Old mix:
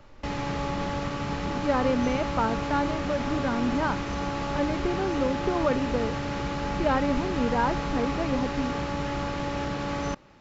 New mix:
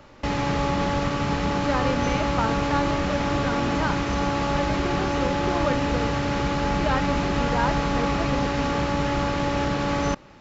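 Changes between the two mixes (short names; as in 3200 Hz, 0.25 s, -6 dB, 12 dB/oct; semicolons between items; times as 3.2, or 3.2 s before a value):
speech: add tilt +2.5 dB/oct; background +6.0 dB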